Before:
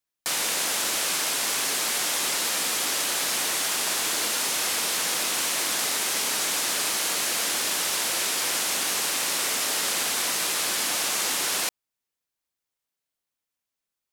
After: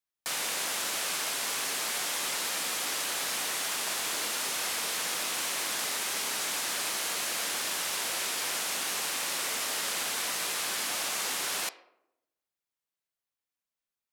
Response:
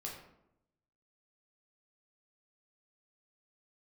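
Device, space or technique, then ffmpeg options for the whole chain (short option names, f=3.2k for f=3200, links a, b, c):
filtered reverb send: -filter_complex "[0:a]asplit=2[a][b];[b]highpass=f=310:w=0.5412,highpass=f=310:w=1.3066,lowpass=4.1k[c];[1:a]atrim=start_sample=2205[d];[c][d]afir=irnorm=-1:irlink=0,volume=-7.5dB[e];[a][e]amix=inputs=2:normalize=0,volume=-6.5dB"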